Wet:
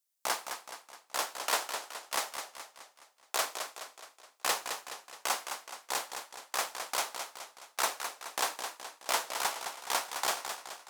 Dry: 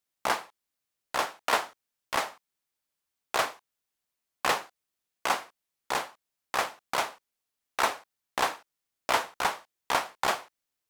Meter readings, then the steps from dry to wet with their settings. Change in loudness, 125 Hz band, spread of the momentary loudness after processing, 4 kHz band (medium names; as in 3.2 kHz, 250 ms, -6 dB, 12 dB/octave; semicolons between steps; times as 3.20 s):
-4.0 dB, under -10 dB, 13 LU, -0.5 dB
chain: tone controls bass -10 dB, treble +11 dB; modulated delay 211 ms, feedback 50%, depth 98 cents, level -7.5 dB; trim -6.5 dB